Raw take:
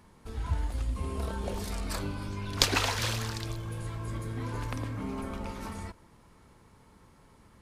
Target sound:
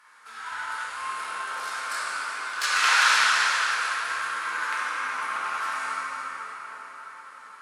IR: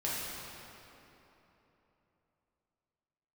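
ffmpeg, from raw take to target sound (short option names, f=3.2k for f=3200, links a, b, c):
-filter_complex "[0:a]asplit=3[a][b][c];[a]afade=t=out:st=1.21:d=0.02[d];[b]aeval=exprs='(tanh(22.4*val(0)+0.75)-tanh(0.75))/22.4':c=same,afade=t=in:st=1.21:d=0.02,afade=t=out:st=2.82:d=0.02[e];[c]afade=t=in:st=2.82:d=0.02[f];[d][e][f]amix=inputs=3:normalize=0,highpass=f=1.4k:t=q:w=4[g];[1:a]atrim=start_sample=2205,asetrate=22491,aresample=44100[h];[g][h]afir=irnorm=-1:irlink=0"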